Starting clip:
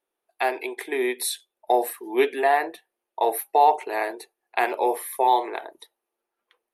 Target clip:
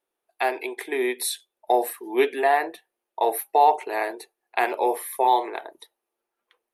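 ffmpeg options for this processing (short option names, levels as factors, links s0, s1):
-filter_complex "[0:a]asettb=1/sr,asplit=3[s0][s1][s2];[s0]atrim=end=5.254[s3];[s1]atrim=start=5.25:end=5.65,asetpts=PTS-STARTPTS,afade=t=in:d=0.004:c=qsin,afade=t=out:st=0.396:d=0.004:c=qsin,agate=range=0.0224:threshold=0.0355:ratio=3:detection=peak[s4];[s2]atrim=start=5.646[s5];[s3][s4]acrossfade=d=0.004:c1=hsin:c2=qsin[s6];[s6][s5]acrossfade=d=0.004:c1=qsin:c2=hsin"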